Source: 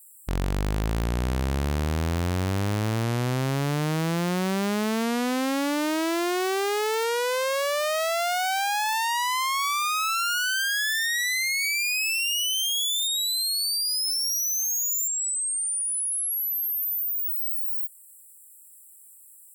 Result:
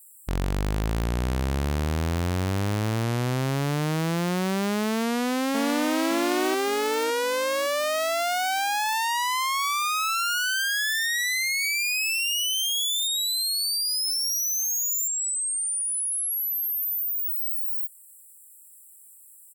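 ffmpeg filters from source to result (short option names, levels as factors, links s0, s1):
-filter_complex "[0:a]asplit=2[s0][s1];[s1]afade=t=in:st=4.98:d=0.01,afade=t=out:st=5.98:d=0.01,aecho=0:1:560|1120|1680|2240|2800|3360:0.630957|0.283931|0.127769|0.057496|0.0258732|0.0116429[s2];[s0][s2]amix=inputs=2:normalize=0"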